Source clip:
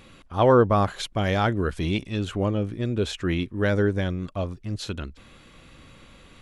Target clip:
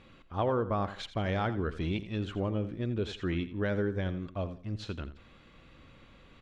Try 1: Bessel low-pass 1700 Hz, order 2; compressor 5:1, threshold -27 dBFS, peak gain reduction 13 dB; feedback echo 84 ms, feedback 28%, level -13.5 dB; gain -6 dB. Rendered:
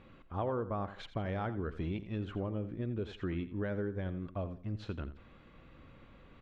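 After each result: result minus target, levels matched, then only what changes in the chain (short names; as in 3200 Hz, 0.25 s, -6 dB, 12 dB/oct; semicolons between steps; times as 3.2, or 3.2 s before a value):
compressor: peak gain reduction +5.5 dB; 4000 Hz band -5.0 dB
change: compressor 5:1, threshold -20 dBFS, peak gain reduction 7.5 dB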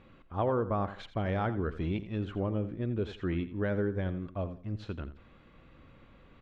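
4000 Hz band -7.0 dB
change: Bessel low-pass 3600 Hz, order 2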